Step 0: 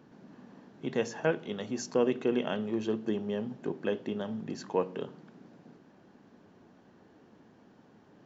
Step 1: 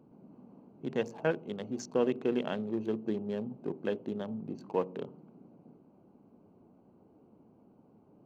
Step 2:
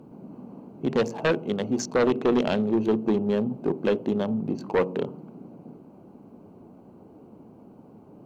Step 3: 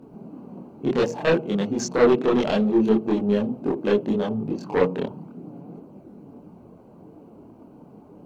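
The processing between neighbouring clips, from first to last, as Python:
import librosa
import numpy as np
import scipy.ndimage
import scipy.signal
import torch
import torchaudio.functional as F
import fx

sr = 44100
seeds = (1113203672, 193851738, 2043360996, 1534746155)

y1 = fx.wiener(x, sr, points=25)
y1 = y1 * 10.0 ** (-1.5 / 20.0)
y2 = fx.fold_sine(y1, sr, drive_db=8, ceiling_db=-15.5)
y3 = fx.chorus_voices(y2, sr, voices=4, hz=0.65, base_ms=26, depth_ms=3.6, mix_pct=55)
y3 = y3 * 10.0 ** (5.5 / 20.0)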